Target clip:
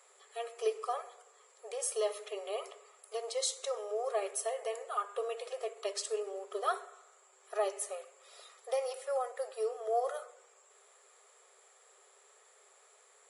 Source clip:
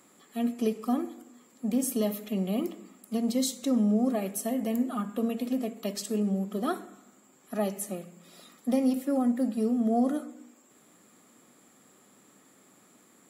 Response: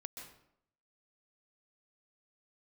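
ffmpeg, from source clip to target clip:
-af "afftfilt=real='re*between(b*sr/4096,380,11000)':imag='im*between(b*sr/4096,380,11000)':win_size=4096:overlap=0.75,adynamicequalizer=threshold=0.00178:dfrequency=1200:dqfactor=3.1:tfrequency=1200:tqfactor=3.1:attack=5:release=100:ratio=0.375:range=2.5:mode=boostabove:tftype=bell,volume=-1.5dB"

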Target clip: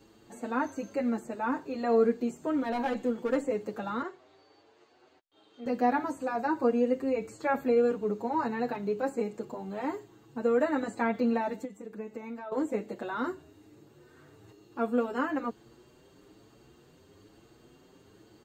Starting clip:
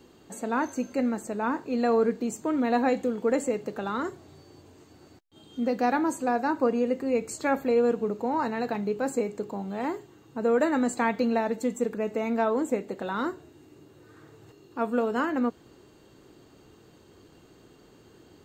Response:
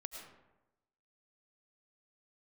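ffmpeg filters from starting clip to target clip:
-filter_complex "[0:a]acrossover=split=2700[a][b];[b]acompressor=threshold=-49dB:ratio=4:attack=1:release=60[c];[a][c]amix=inputs=2:normalize=0,asettb=1/sr,asplit=3[d][e][f];[d]atrim=end=2.584[g];[e]atrim=start=2.58:end=3.4,asetpts=PTS-STARTPTS,afade=t=in:d=0.004:c=qsin,afade=t=out:st=0.816:d=0.004:c=qsin,volume=19.5dB,asoftclip=hard,volume=-19.5dB[h];[f]atrim=start=3.396[i];[g][h]acrossfade=d=0.004:c1=hsin:c2=qsin[j];[j][i]acrossfade=d=0.004:c1=qsin:c2=hsin,asettb=1/sr,asplit=3[k][l][m];[k]atrim=end=4.024[n];[l]atrim=start=4.02:end=5.66,asetpts=PTS-STARTPTS,afade=t=in:d=0.004:c=qsin,afade=t=out:st=1.636:d=0.004:c=qsin,acrossover=split=390 5100:gain=0.0891 1 0.0794[o][p][q];[o][p][q]amix=inputs=3:normalize=0[r];[m]atrim=start=5.656[s];[n][r]acrossfade=d=0.004:c1=hsin:c2=qsin[t];[t][s]acrossfade=d=0.004:c1=qsin:c2=hsin,asettb=1/sr,asplit=3[u][v][w];[u]atrim=end=11.644[x];[v]atrim=start=11.64:end=12.52,asetpts=PTS-STARTPTS,afade=t=in:d=0.004:c=qsin,afade=t=out:st=0.876:d=0.004:c=qsin,acompressor=threshold=-33dB:ratio=16[y];[w]atrim=start=12.516[z];[x][y]acrossfade=d=0.004:c1=hsin:c2=qsin[aa];[aa][z]acrossfade=d=0.004:c1=qsin:c2=hsin,asplit=2[ab][ac];[ac]adelay=7,afreqshift=1.1[ad];[ab][ad]amix=inputs=2:normalize=1"

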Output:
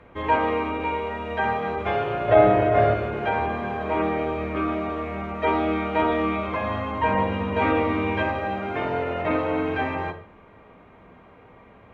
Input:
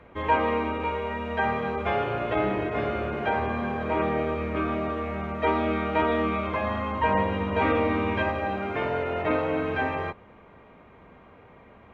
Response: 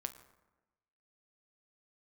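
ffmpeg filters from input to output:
-filter_complex "[0:a]asettb=1/sr,asplit=3[a][b][c];[a]atrim=end=2.284[d];[b]atrim=start=2.28:end=2.94,asetpts=PTS-STARTPTS,afade=t=in:d=0.004:c=qsin,afade=t=out:st=0.656:d=0.004:c=qsin,equalizer=f=100:t=o:w=0.67:g=11,equalizer=f=630:t=o:w=0.67:g=12,equalizer=f=1.6k:t=o:w=0.67:g=5[e];[c]atrim=start=2.936[f];[d][e]acrossfade=d=0.004:c1=hsin:c2=qsin[g];[g][f]acrossfade=d=0.004:c1=qsin:c2=hsin[h];[1:a]atrim=start_sample=2205,atrim=end_sample=3969,asetrate=23814,aresample=44100[i];[h][i]afir=irnorm=-1:irlink=0"

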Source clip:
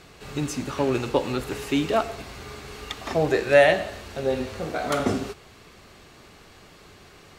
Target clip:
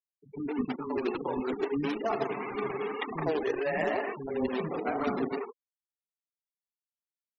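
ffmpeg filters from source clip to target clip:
-filter_complex "[0:a]agate=range=-10dB:threshold=-42dB:ratio=16:detection=peak,highpass=f=160:w=0.5412,highpass=f=160:w=1.3066,equalizer=f=250:t=q:w=4:g=6,equalizer=f=410:t=q:w=4:g=7,equalizer=f=600:t=q:w=4:g=-6,equalizer=f=960:t=q:w=4:g=5,equalizer=f=1.5k:t=q:w=4:g=-5,lowpass=f=2.5k:w=0.5412,lowpass=f=2.5k:w=1.3066,bandreject=f=60:t=h:w=6,bandreject=f=120:t=h:w=6,bandreject=f=180:t=h:w=6,bandreject=f=240:t=h:w=6,dynaudnorm=f=290:g=9:m=11dB,alimiter=limit=-12dB:level=0:latency=1:release=31,areverse,acompressor=threshold=-30dB:ratio=8,areverse,flanger=delay=2.6:depth=4.4:regen=-6:speed=2:shape=sinusoidal,acrusher=bits=2:mode=log:mix=0:aa=0.000001,aeval=exprs='sgn(val(0))*max(abs(val(0))-0.00211,0)':c=same,acrossover=split=300[a][b];[b]adelay=110[c];[a][c]amix=inputs=2:normalize=0,afftfilt=real='re*gte(hypot(re,im),0.00891)':imag='im*gte(hypot(re,im),0.00891)':win_size=1024:overlap=0.75,volume=7dB"

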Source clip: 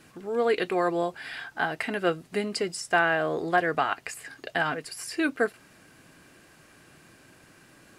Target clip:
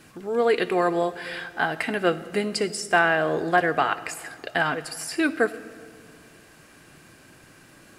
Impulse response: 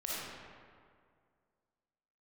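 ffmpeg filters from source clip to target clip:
-filter_complex "[0:a]asplit=2[a][b];[1:a]atrim=start_sample=2205,lowshelf=f=170:g=11.5,highshelf=f=5.8k:g=12[c];[b][c]afir=irnorm=-1:irlink=0,volume=-18.5dB[d];[a][d]amix=inputs=2:normalize=0,volume=2.5dB"

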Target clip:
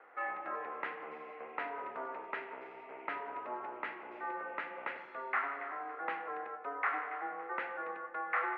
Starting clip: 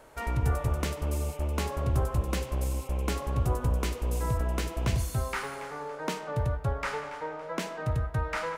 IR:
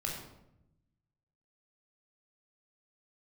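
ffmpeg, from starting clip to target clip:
-filter_complex "[0:a]highpass=f=420:t=q:w=0.5412,highpass=f=420:t=q:w=1.307,lowpass=f=2.1k:t=q:w=0.5176,lowpass=f=2.1k:t=q:w=0.7071,lowpass=f=2.1k:t=q:w=1.932,afreqshift=-130,aderivative,asplit=2[a][b];[1:a]atrim=start_sample=2205[c];[b][c]afir=irnorm=-1:irlink=0,volume=-9.5dB[d];[a][d]amix=inputs=2:normalize=0,volume=13.5dB"

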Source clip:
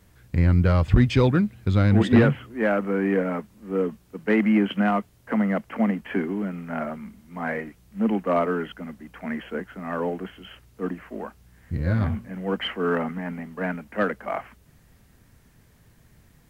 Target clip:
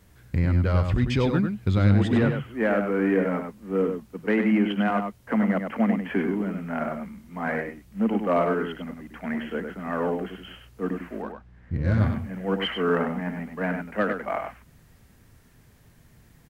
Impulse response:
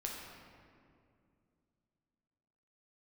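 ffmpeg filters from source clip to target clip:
-filter_complex "[0:a]asettb=1/sr,asplit=3[a][b][c];[a]atrim=end=11.224[d];[b]atrim=start=11.22:end=11.99,asetpts=PTS-STARTPTS,afade=t=in:d=0.004:c=qsin,afade=t=out:st=0.766:d=0.004:c=qsin,adynamicsmooth=sensitivity=7.5:basefreq=2.7k[e];[c]atrim=start=11.986[f];[d][e]acrossfade=d=0.004:c1=hsin:c2=qsin[g];[g][f]acrossfade=d=0.004:c1=qsin:c2=hsin,alimiter=limit=-13.5dB:level=0:latency=1:release=320,asplit=2[h][i];[i]adelay=99.13,volume=-6dB,highshelf=f=4k:g=-2.23[j];[h][j]amix=inputs=2:normalize=0"

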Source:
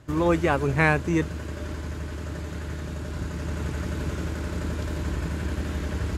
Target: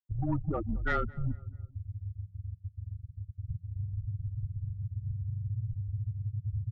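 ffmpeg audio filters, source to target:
-filter_complex "[0:a]afftfilt=real='re*gte(hypot(re,im),0.282)':imag='im*gte(hypot(re,im),0.282)':win_size=1024:overlap=0.75,equalizer=f=860:w=0.33:g=-11.5,acrossover=split=430[a][b];[a]acompressor=threshold=-41dB:ratio=2[c];[c][b]amix=inputs=2:normalize=0,asoftclip=type=tanh:threshold=-23.5dB,asetrate=40572,aresample=44100,afreqshift=-170,asplit=2[d][e];[e]adelay=219,lowpass=f=1.5k:p=1,volume=-21.5dB,asplit=2[f][g];[g]adelay=219,lowpass=f=1.5k:p=1,volume=0.48,asplit=2[h][i];[i]adelay=219,lowpass=f=1.5k:p=1,volume=0.48[j];[f][h][j]amix=inputs=3:normalize=0[k];[d][k]amix=inputs=2:normalize=0,volume=4.5dB"

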